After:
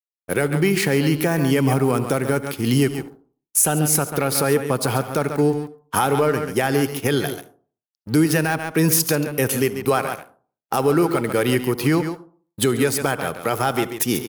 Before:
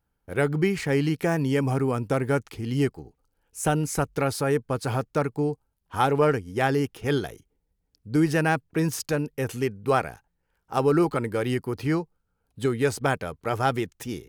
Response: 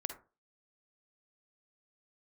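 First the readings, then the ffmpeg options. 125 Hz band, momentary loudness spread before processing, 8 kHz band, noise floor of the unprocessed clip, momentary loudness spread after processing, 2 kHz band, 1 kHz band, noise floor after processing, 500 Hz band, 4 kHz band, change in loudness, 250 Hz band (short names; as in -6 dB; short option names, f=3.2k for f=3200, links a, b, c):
+4.0 dB, 7 LU, +14.5 dB, -76 dBFS, 7 LU, +5.5 dB, +3.5 dB, under -85 dBFS, +4.5 dB, +9.5 dB, +5.5 dB, +5.5 dB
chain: -filter_complex "[0:a]highpass=f=120:w=0.5412,highpass=f=120:w=1.3066,highshelf=f=3k:g=7,aecho=1:1:138:0.266,adynamicequalizer=threshold=0.00501:dfrequency=8200:dqfactor=0.92:tfrequency=8200:tqfactor=0.92:attack=5:release=100:ratio=0.375:range=2.5:mode=cutabove:tftype=bell,acontrast=76,alimiter=limit=-15dB:level=0:latency=1:release=462,aexciter=amount=2.7:drive=3.2:freq=10k,aeval=exprs='sgn(val(0))*max(abs(val(0))-0.00447,0)':c=same,agate=range=-33dB:threshold=-38dB:ratio=3:detection=peak,asplit=2[a][b];[1:a]atrim=start_sample=2205,asetrate=32193,aresample=44100[c];[b][c]afir=irnorm=-1:irlink=0,volume=-6.5dB[d];[a][d]amix=inputs=2:normalize=0,volume=3dB"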